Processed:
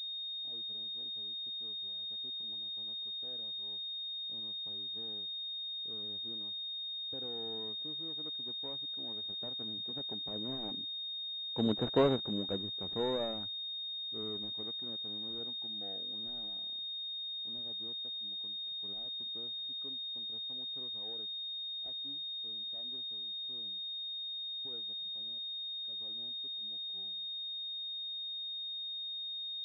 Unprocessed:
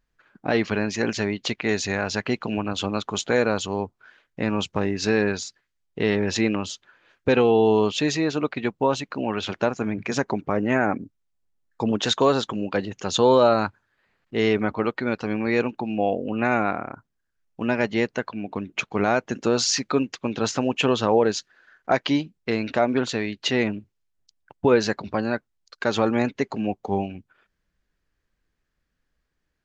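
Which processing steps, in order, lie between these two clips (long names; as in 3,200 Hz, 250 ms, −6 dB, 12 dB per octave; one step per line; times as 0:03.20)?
running median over 41 samples
source passing by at 0:11.95, 7 m/s, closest 2.4 metres
switching amplifier with a slow clock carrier 3,700 Hz
level −5 dB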